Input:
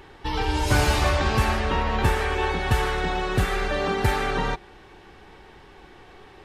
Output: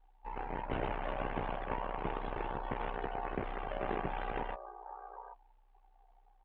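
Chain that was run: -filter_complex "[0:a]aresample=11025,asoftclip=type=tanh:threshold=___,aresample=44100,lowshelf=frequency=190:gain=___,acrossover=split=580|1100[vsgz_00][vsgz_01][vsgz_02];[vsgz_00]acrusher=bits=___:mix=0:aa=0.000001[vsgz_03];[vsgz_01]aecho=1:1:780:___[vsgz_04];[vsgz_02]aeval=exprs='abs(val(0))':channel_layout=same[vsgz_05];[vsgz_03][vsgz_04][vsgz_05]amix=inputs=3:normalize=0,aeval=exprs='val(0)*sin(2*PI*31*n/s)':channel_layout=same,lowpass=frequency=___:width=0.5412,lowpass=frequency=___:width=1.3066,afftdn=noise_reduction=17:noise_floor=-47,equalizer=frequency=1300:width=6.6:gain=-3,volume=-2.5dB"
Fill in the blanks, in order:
-21dB, -11.5, 4, 0.562, 2800, 2800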